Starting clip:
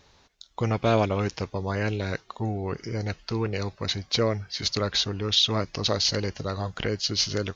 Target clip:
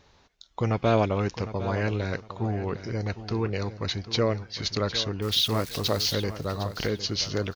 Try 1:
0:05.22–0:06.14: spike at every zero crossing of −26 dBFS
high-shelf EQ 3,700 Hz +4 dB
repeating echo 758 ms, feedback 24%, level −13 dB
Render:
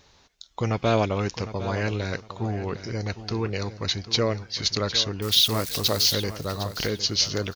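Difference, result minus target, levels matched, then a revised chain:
8,000 Hz band +4.5 dB
0:05.22–0:06.14: spike at every zero crossing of −26 dBFS
high-shelf EQ 3,700 Hz −5.5 dB
repeating echo 758 ms, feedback 24%, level −13 dB

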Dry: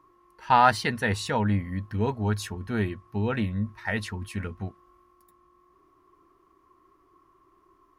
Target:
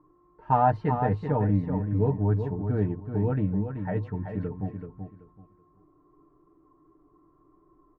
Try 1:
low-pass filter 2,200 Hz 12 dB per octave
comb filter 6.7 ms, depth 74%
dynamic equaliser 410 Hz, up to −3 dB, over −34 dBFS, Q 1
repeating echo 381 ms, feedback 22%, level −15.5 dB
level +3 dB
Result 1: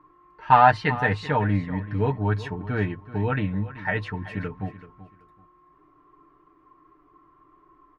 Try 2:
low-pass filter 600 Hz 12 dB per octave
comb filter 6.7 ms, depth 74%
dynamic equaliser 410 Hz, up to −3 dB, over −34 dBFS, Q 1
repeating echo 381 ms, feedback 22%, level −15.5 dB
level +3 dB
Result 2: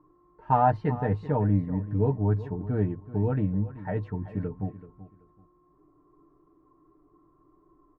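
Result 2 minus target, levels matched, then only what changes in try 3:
echo-to-direct −8 dB
change: repeating echo 381 ms, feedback 22%, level −7.5 dB

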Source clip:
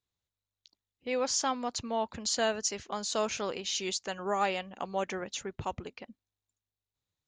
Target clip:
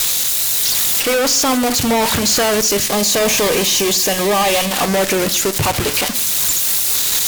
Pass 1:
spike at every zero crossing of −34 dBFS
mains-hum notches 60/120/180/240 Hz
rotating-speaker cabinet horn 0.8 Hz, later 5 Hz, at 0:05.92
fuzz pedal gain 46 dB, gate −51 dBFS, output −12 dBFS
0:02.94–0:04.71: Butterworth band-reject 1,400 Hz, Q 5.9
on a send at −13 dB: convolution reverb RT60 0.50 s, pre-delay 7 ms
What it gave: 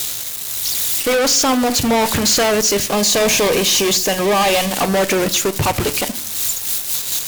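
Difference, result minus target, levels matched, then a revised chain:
spike at every zero crossing: distortion −9 dB
spike at every zero crossing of −24.5 dBFS
mains-hum notches 60/120/180/240 Hz
rotating-speaker cabinet horn 0.8 Hz, later 5 Hz, at 0:05.92
fuzz pedal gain 46 dB, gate −51 dBFS, output −12 dBFS
0:02.94–0:04.71: Butterworth band-reject 1,400 Hz, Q 5.9
on a send at −13 dB: convolution reverb RT60 0.50 s, pre-delay 7 ms

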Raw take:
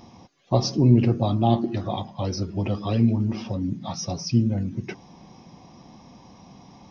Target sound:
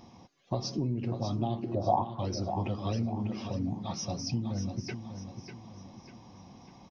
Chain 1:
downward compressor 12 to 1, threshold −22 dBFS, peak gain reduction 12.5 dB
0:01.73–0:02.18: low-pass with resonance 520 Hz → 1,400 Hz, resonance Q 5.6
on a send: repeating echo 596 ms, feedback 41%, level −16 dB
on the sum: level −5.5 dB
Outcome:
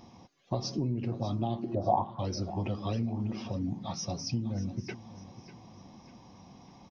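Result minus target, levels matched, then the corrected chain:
echo-to-direct −7 dB
downward compressor 12 to 1, threshold −22 dBFS, peak gain reduction 12.5 dB
0:01.73–0:02.18: low-pass with resonance 520 Hz → 1,400 Hz, resonance Q 5.6
on a send: repeating echo 596 ms, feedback 41%, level −9 dB
on the sum: level −5.5 dB

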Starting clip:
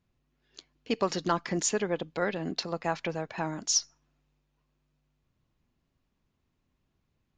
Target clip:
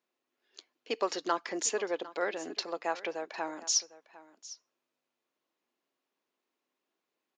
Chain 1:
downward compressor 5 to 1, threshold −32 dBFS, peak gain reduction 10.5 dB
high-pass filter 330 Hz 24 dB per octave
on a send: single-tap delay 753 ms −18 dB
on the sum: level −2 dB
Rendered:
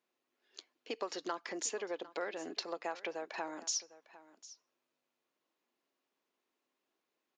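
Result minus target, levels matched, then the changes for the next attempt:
downward compressor: peak gain reduction +10.5 dB
remove: downward compressor 5 to 1, threshold −32 dBFS, peak gain reduction 10.5 dB

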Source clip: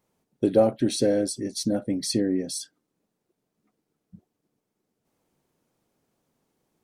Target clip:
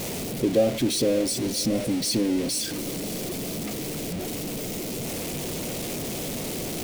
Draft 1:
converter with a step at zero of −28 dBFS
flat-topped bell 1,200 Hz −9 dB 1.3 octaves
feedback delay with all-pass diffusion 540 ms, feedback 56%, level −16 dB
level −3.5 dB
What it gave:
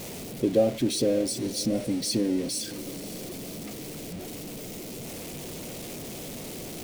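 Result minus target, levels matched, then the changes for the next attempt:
converter with a step at zero: distortion −5 dB
change: converter with a step at zero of −21 dBFS

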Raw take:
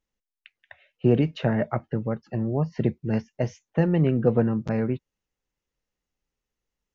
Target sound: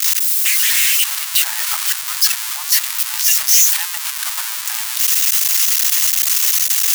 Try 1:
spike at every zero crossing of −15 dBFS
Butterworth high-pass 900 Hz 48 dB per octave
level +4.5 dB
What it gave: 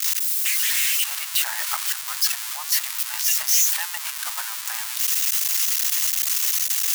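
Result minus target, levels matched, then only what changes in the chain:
spike at every zero crossing: distortion −7 dB
change: spike at every zero crossing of −8 dBFS

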